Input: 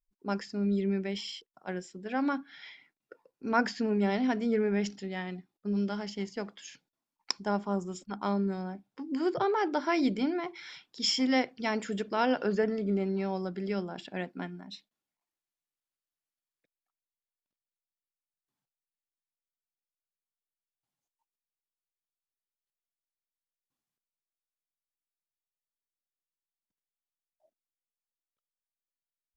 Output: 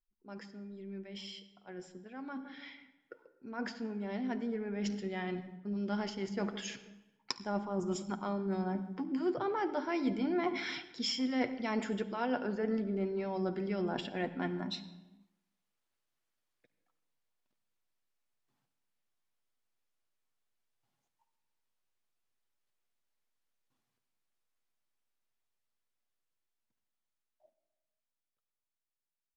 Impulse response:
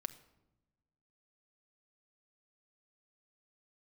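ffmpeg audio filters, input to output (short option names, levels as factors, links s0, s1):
-filter_complex "[0:a]aemphasis=mode=reproduction:type=cd,asplit=2[s0][s1];[s1]adelay=161,lowpass=f=870:p=1,volume=0.0841,asplit=2[s2][s3];[s3]adelay=161,lowpass=f=870:p=1,volume=0.46,asplit=2[s4][s5];[s5]adelay=161,lowpass=f=870:p=1,volume=0.46[s6];[s0][s2][s4][s6]amix=inputs=4:normalize=0,areverse,acompressor=threshold=0.0112:ratio=10,areverse[s7];[1:a]atrim=start_sample=2205,afade=t=out:st=0.4:d=0.01,atrim=end_sample=18081,asetrate=28665,aresample=44100[s8];[s7][s8]afir=irnorm=-1:irlink=0,dynaudnorm=f=970:g=9:m=3.98,volume=0.668"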